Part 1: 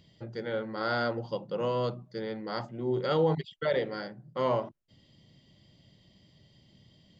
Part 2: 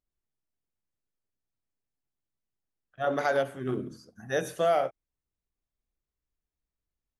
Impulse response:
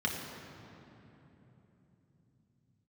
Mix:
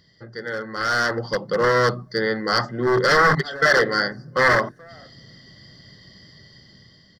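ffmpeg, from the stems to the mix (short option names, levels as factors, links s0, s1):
-filter_complex "[0:a]volume=0.944,asplit=2[s0][s1];[1:a]aemphasis=mode=reproduction:type=bsi,acompressor=threshold=0.0224:ratio=3,volume=42.2,asoftclip=hard,volume=0.0237,adelay=200,volume=0.282,afade=t=out:st=4.11:d=0.24:silence=0.237137,asplit=2[s2][s3];[s3]volume=0.1[s4];[s1]apad=whole_len=325908[s5];[s2][s5]sidechaincompress=threshold=0.00794:ratio=8:attack=6:release=113[s6];[2:a]atrim=start_sample=2205[s7];[s4][s7]afir=irnorm=-1:irlink=0[s8];[s0][s6][s8]amix=inputs=3:normalize=0,aeval=exprs='0.0473*(abs(mod(val(0)/0.0473+3,4)-2)-1)':c=same,superequalizer=7b=1.41:10b=2.82:11b=3.98:12b=0.355:14b=3.16,dynaudnorm=f=480:g=5:m=3.55"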